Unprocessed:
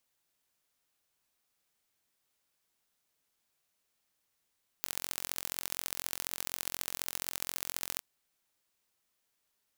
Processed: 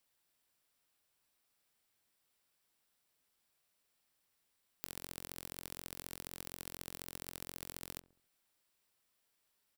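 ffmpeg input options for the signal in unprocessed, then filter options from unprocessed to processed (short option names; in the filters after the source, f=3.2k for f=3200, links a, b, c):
-f lavfi -i "aevalsrc='0.501*eq(mod(n,1000),0)*(0.5+0.5*eq(mod(n,3000),0))':d=3.17:s=44100"
-filter_complex "[0:a]bandreject=f=6.5k:w=8.9,acrossover=split=470[a][b];[b]acompressor=threshold=-39dB:ratio=10[c];[a][c]amix=inputs=2:normalize=0,asplit=2[d][e];[e]adelay=68,lowpass=f=870:p=1,volume=-18dB,asplit=2[f][g];[g]adelay=68,lowpass=f=870:p=1,volume=0.52,asplit=2[h][i];[i]adelay=68,lowpass=f=870:p=1,volume=0.52,asplit=2[j][k];[k]adelay=68,lowpass=f=870:p=1,volume=0.52[l];[d][f][h][j][l]amix=inputs=5:normalize=0"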